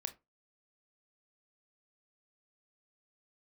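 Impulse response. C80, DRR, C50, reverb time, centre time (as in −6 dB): 25.5 dB, 8.0 dB, 17.0 dB, 0.25 s, 6 ms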